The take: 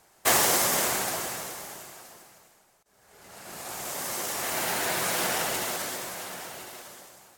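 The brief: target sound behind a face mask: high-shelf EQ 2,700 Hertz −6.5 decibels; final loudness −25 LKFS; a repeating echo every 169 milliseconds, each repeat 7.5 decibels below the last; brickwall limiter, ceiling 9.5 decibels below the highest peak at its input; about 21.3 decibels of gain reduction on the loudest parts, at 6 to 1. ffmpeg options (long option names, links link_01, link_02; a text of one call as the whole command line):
ffmpeg -i in.wav -af "acompressor=threshold=-42dB:ratio=6,alimiter=level_in=12dB:limit=-24dB:level=0:latency=1,volume=-12dB,highshelf=frequency=2700:gain=-6.5,aecho=1:1:169|338|507|676|845:0.422|0.177|0.0744|0.0312|0.0131,volume=22.5dB" out.wav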